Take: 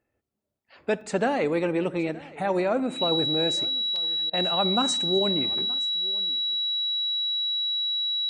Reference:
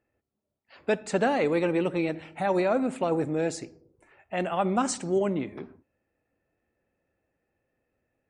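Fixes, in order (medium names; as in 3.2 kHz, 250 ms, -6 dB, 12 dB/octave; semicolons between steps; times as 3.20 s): band-stop 3.9 kHz, Q 30; interpolate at 1.01/3.96 s, 2.7 ms; interpolate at 4.30 s, 32 ms; inverse comb 922 ms -21.5 dB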